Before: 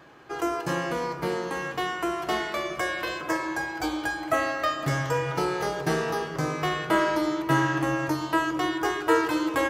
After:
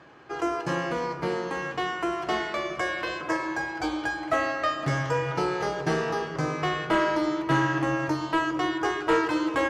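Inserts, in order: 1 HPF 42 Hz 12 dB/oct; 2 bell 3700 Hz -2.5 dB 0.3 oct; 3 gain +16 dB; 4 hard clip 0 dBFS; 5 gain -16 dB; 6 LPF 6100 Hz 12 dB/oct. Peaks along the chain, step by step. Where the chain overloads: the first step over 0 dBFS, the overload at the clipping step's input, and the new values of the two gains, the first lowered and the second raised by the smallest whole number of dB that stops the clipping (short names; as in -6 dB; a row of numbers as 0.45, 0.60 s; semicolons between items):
-8.5, -8.5, +7.5, 0.0, -16.0, -15.5 dBFS; step 3, 7.5 dB; step 3 +8 dB, step 5 -8 dB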